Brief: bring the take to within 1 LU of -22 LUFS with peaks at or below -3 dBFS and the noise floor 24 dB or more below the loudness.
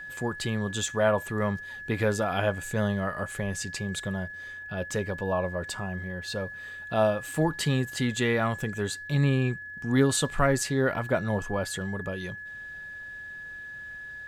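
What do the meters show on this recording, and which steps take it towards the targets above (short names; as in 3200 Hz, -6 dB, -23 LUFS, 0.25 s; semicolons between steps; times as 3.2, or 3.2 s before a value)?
steady tone 1700 Hz; tone level -38 dBFS; loudness -28.5 LUFS; peak -10.0 dBFS; loudness target -22.0 LUFS
-> notch 1700 Hz, Q 30; gain +6.5 dB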